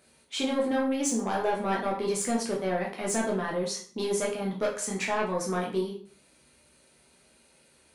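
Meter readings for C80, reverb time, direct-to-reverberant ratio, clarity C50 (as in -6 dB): 11.5 dB, 0.45 s, -3.5 dB, 6.0 dB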